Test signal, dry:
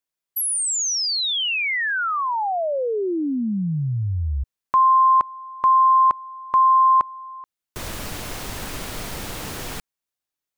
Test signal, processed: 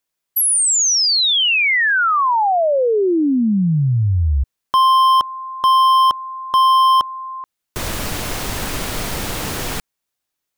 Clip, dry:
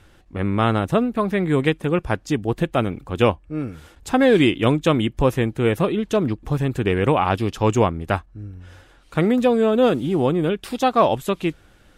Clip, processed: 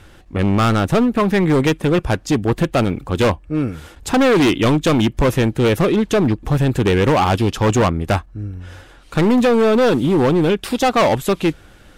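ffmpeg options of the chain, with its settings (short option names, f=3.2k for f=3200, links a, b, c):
-af "asoftclip=type=hard:threshold=-18.5dB,volume=7.5dB"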